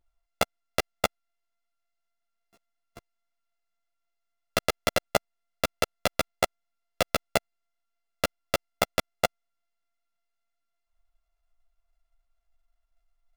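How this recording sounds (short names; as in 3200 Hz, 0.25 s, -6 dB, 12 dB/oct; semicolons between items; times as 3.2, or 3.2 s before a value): a buzz of ramps at a fixed pitch in blocks of 64 samples; a shimmering, thickened sound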